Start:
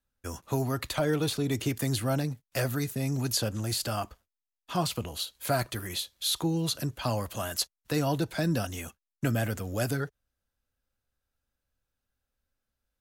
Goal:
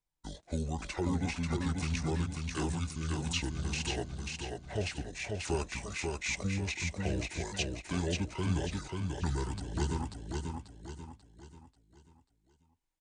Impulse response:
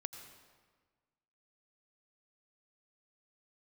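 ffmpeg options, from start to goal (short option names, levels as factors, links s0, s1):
-af "asetrate=26222,aresample=44100,atempo=1.68179,aecho=1:1:539|1078|1617|2156|2695:0.668|0.274|0.112|0.0461|0.0189,volume=0.531"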